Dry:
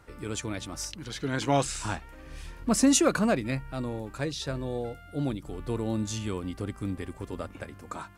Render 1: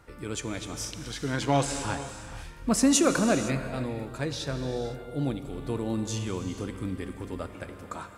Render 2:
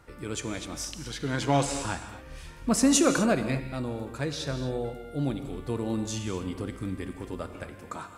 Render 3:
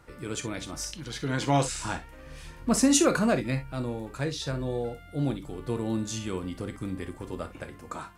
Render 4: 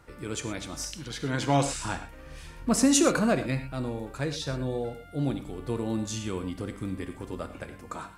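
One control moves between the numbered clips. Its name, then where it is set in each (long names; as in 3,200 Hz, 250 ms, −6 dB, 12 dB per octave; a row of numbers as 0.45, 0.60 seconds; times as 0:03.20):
reverb whose tail is shaped and stops, gate: 530, 280, 80, 140 milliseconds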